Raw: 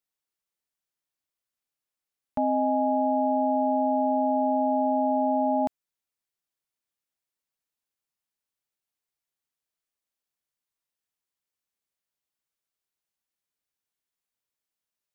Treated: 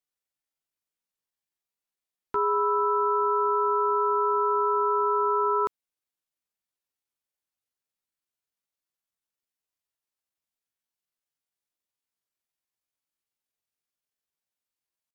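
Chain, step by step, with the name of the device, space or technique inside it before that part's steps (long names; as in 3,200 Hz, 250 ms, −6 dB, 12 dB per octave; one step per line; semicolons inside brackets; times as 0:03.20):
chipmunk voice (pitch shifter +8 semitones)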